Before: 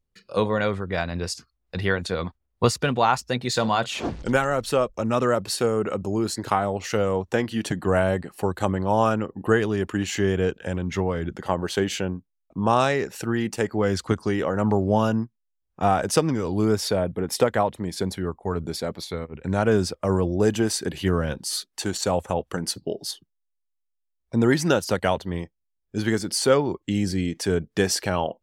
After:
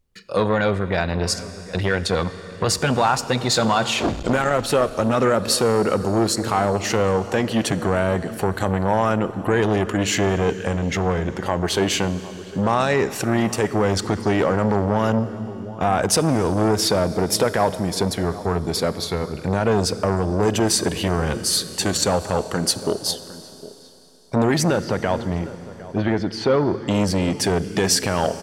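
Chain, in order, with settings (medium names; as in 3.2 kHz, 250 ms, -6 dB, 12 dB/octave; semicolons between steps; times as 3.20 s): peak limiter -14.5 dBFS, peak gain reduction 9 dB; 24.64–26.83 s: distance through air 280 m; echo from a far wall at 130 m, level -18 dB; Schroeder reverb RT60 3.8 s, combs from 27 ms, DRR 14 dB; transformer saturation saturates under 570 Hz; trim +8 dB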